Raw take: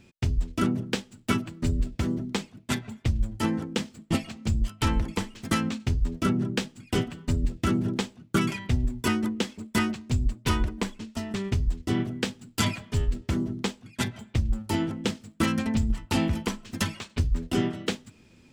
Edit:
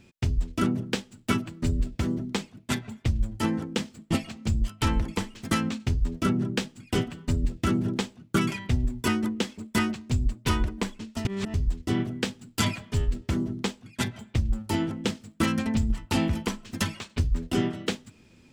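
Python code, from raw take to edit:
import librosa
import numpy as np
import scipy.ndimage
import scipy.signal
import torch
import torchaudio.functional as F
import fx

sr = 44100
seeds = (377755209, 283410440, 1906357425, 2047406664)

y = fx.edit(x, sr, fx.reverse_span(start_s=11.25, length_s=0.29), tone=tone)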